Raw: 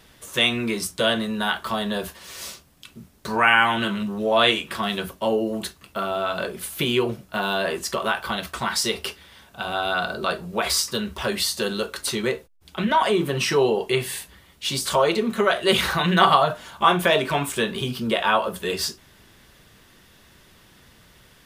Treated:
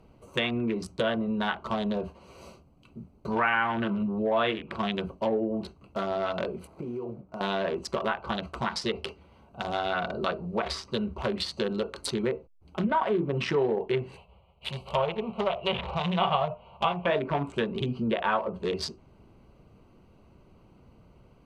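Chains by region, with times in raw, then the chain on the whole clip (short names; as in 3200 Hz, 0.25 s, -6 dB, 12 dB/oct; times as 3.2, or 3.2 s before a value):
6.67–7.41 median filter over 15 samples + compressor 8:1, threshold -30 dBFS + low shelf 100 Hz -8.5 dB
14.16–17.06 spectral whitening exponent 0.6 + resonant high shelf 4200 Hz -13.5 dB, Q 3 + fixed phaser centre 710 Hz, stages 4
whole clip: Wiener smoothing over 25 samples; treble ducked by the level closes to 2100 Hz, closed at -20 dBFS; compressor 2:1, threshold -26 dBFS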